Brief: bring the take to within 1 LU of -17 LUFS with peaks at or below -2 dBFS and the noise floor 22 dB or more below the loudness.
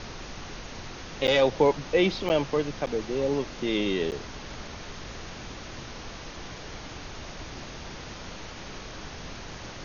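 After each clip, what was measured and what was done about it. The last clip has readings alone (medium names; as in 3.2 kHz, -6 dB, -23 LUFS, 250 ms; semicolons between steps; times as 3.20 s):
dropouts 4; longest dropout 8.5 ms; noise floor -41 dBFS; noise floor target -53 dBFS; loudness -30.5 LUFS; peak level -9.0 dBFS; loudness target -17.0 LUFS
-> interpolate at 1.27/2.29/2.86/4.11 s, 8.5 ms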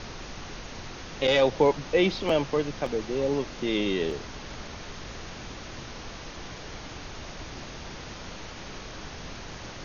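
dropouts 0; noise floor -41 dBFS; noise floor target -53 dBFS
-> noise print and reduce 12 dB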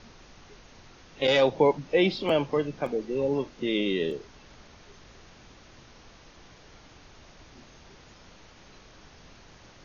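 noise floor -53 dBFS; loudness -26.0 LUFS; peak level -9.0 dBFS; loudness target -17.0 LUFS
-> trim +9 dB; peak limiter -2 dBFS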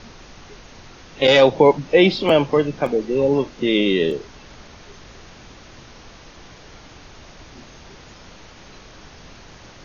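loudness -17.5 LUFS; peak level -2.0 dBFS; noise floor -44 dBFS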